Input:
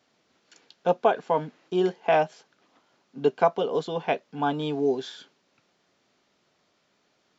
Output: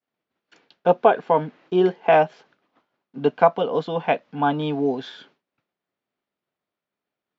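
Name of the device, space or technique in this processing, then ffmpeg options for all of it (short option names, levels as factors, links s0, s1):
hearing-loss simulation: -filter_complex "[0:a]lowpass=3100,agate=range=0.0224:threshold=0.00158:ratio=3:detection=peak,asettb=1/sr,asplit=3[s0][s1][s2];[s0]atrim=end=3.184[s3];[s1]atrim=start=3.18:end=5.07,asetpts=PTS-STARTPTS,afade=t=in:d=0.004:c=qsin,afade=t=out:st=1.886:d=0.004:c=qsin,equalizer=f=390:t=o:w=0.26:g=-9[s4];[s2]atrim=start=5.066[s5];[s3][s4]acrossfade=d=0.004:c1=hsin:c2=qsin[s6];[s6][s5]acrossfade=d=0.004:c1=qsin:c2=hsin,volume=1.88"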